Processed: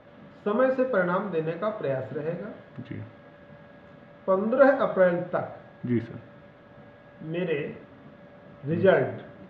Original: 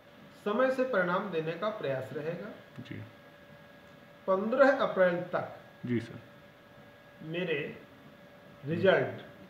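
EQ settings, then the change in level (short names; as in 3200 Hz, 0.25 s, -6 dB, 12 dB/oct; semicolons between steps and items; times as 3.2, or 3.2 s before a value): air absorption 110 m; high shelf 2200 Hz -10 dB; +6.0 dB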